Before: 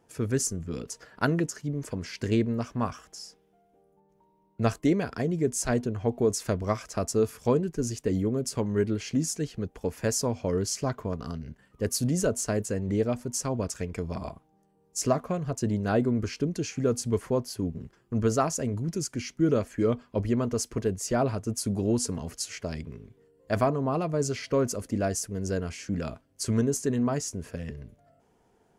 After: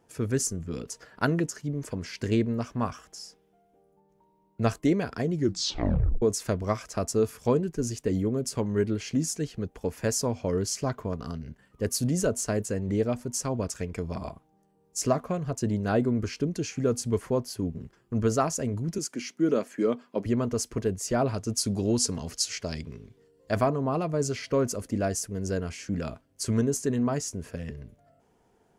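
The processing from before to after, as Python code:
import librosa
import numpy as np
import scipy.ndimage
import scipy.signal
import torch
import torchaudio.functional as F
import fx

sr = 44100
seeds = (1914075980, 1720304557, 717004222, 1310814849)

y = fx.highpass(x, sr, hz=190.0, slope=24, at=(18.98, 20.26))
y = fx.peak_eq(y, sr, hz=4900.0, db=7.5, octaves=1.4, at=(21.34, 23.52))
y = fx.edit(y, sr, fx.tape_stop(start_s=5.33, length_s=0.89), tone=tone)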